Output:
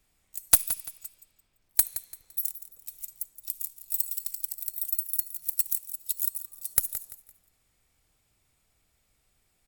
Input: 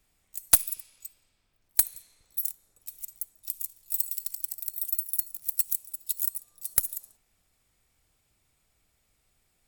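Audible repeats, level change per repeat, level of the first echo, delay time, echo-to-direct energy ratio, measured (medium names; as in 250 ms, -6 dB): 3, -10.0 dB, -13.5 dB, 170 ms, -13.0 dB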